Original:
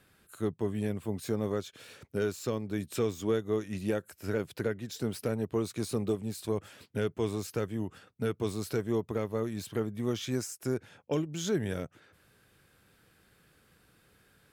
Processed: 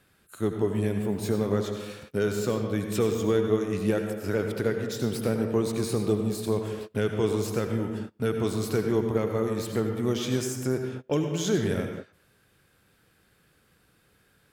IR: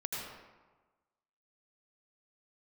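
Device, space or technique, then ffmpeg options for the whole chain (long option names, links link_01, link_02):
keyed gated reverb: -filter_complex "[0:a]asplit=3[link_01][link_02][link_03];[1:a]atrim=start_sample=2205[link_04];[link_02][link_04]afir=irnorm=-1:irlink=0[link_05];[link_03]apad=whole_len=640725[link_06];[link_05][link_06]sidechaingate=range=-27dB:threshold=-54dB:ratio=16:detection=peak,volume=-1dB[link_07];[link_01][link_07]amix=inputs=2:normalize=0"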